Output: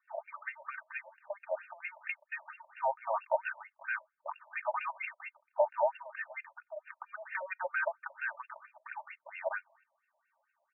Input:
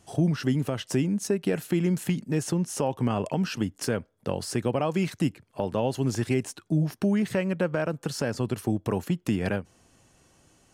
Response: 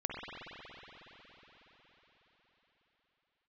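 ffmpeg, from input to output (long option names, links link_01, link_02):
-af "agate=range=-11dB:threshold=-55dB:ratio=16:detection=peak,aecho=1:1:3.3:0.77,afftfilt=real='re*between(b*sr/1024,750*pow(2000/750,0.5+0.5*sin(2*PI*4.4*pts/sr))/1.41,750*pow(2000/750,0.5+0.5*sin(2*PI*4.4*pts/sr))*1.41)':imag='im*between(b*sr/1024,750*pow(2000/750,0.5+0.5*sin(2*PI*4.4*pts/sr))/1.41,750*pow(2000/750,0.5+0.5*sin(2*PI*4.4*pts/sr))*1.41)':win_size=1024:overlap=0.75,volume=1.5dB"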